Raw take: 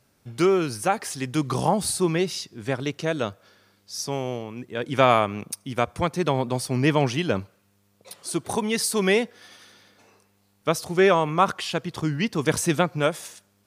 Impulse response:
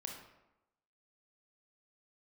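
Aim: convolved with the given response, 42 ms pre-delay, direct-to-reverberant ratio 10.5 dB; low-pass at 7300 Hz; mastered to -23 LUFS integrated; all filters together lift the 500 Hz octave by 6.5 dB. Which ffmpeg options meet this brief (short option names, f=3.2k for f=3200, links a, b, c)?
-filter_complex "[0:a]lowpass=7.3k,equalizer=f=500:t=o:g=8.5,asplit=2[a][b];[1:a]atrim=start_sample=2205,adelay=42[c];[b][c]afir=irnorm=-1:irlink=0,volume=-8.5dB[d];[a][d]amix=inputs=2:normalize=0,volume=-3dB"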